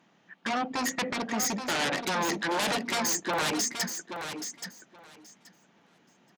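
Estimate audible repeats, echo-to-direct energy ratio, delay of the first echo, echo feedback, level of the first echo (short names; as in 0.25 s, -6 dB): 2, -8.0 dB, 0.827 s, 16%, -8.0 dB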